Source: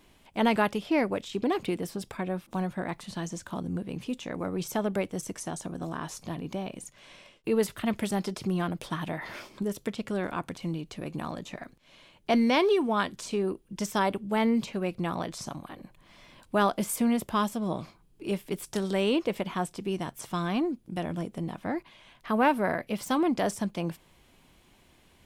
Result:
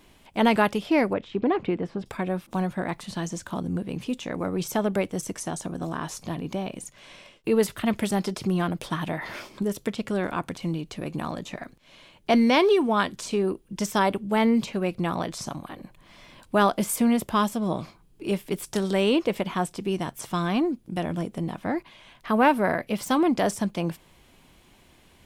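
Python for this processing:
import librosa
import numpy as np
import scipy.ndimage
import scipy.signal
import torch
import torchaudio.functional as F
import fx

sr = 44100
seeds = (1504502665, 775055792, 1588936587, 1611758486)

y = fx.lowpass(x, sr, hz=2200.0, slope=12, at=(1.13, 2.06))
y = F.gain(torch.from_numpy(y), 4.0).numpy()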